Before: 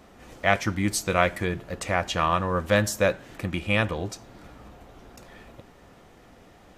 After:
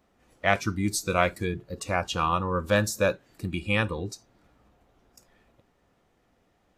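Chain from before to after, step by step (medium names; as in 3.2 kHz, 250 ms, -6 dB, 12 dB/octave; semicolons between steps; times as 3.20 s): spectral noise reduction 14 dB; trim -1.5 dB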